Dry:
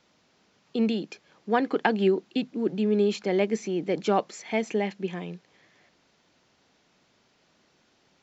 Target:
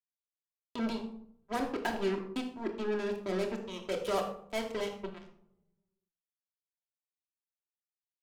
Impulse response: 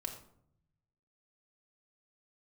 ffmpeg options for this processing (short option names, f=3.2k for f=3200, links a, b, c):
-filter_complex "[0:a]asettb=1/sr,asplit=3[a][b][c];[a]atrim=end=3.614[d];[b]atrim=start=3.61:end=4.93,asetpts=PTS-STARTPTS,afade=t=in:d=0.004:c=qsin,afade=t=out:st=1.316:d=0.004:c=qsin,equalizer=f=315:t=o:w=0.33:g=-11,equalizer=f=500:t=o:w=0.33:g=9,equalizer=f=1.25k:t=o:w=0.33:g=10,equalizer=f=3.15k:t=o:w=0.33:g=11[e];[c]atrim=start=4.926[f];[d][e]acrossfade=d=0.004:c1=hsin:c2=qsin[g];[g][f]acrossfade=d=0.004:c1=qsin:c2=hsin,acrusher=bits=3:mix=0:aa=0.5[h];[1:a]atrim=start_sample=2205[i];[h][i]afir=irnorm=-1:irlink=0,volume=-9dB"